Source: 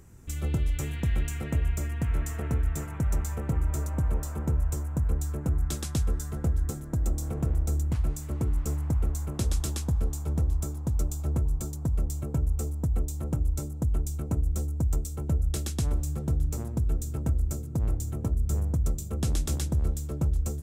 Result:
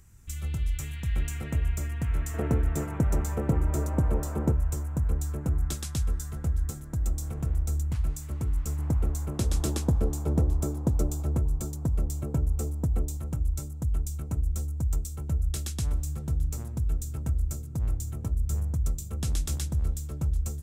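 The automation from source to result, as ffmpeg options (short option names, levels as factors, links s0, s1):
-af "asetnsamples=n=441:p=0,asendcmd='1.16 equalizer g -3.5;2.34 equalizer g 7.5;4.52 equalizer g -1;5.73 equalizer g -7;8.79 equalizer g 2;9.54 equalizer g 8.5;11.23 equalizer g 1.5;13.17 equalizer g -7.5',equalizer=f=400:t=o:w=2.7:g=-13"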